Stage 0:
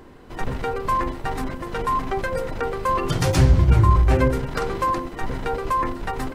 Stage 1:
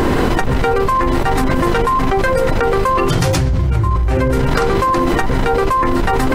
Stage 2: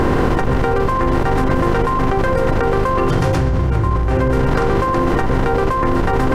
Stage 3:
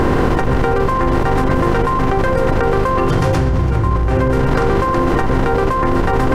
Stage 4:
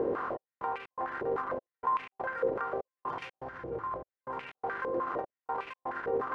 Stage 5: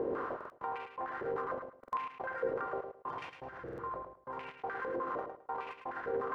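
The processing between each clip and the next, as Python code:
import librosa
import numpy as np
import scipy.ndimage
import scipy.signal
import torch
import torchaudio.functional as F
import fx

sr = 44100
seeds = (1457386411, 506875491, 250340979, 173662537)

y1 = fx.env_flatten(x, sr, amount_pct=100)
y1 = y1 * librosa.db_to_amplitude(-4.0)
y2 = fx.bin_compress(y1, sr, power=0.6)
y2 = fx.high_shelf(y2, sr, hz=2500.0, db=-11.5)
y2 = y2 * librosa.db_to_amplitude(-3.5)
y3 = y2 + 10.0 ** (-16.5 / 20.0) * np.pad(y2, (int(334 * sr / 1000.0), 0))[:len(y2)]
y3 = y3 * librosa.db_to_amplitude(1.0)
y4 = fx.step_gate(y3, sr, bpm=123, pattern='xxx..xx.xx', floor_db=-60.0, edge_ms=4.5)
y4 = fx.filter_held_bandpass(y4, sr, hz=6.6, low_hz=470.0, high_hz=2500.0)
y4 = y4 * librosa.db_to_amplitude(-7.5)
y5 = fx.echo_feedback(y4, sr, ms=107, feedback_pct=21, wet_db=-7.0)
y5 = fx.buffer_glitch(y5, sr, at_s=(0.36, 1.79, 3.64), block=2048, repeats=2)
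y5 = y5 * librosa.db_to_amplitude(-4.5)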